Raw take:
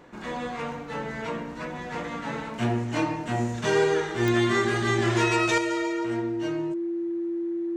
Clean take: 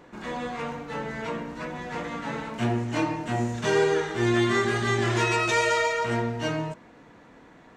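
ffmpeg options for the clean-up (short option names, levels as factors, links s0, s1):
-af "adeclick=t=4,bandreject=f=340:w=30,asetnsamples=n=441:p=0,asendcmd='5.58 volume volume 7.5dB',volume=1"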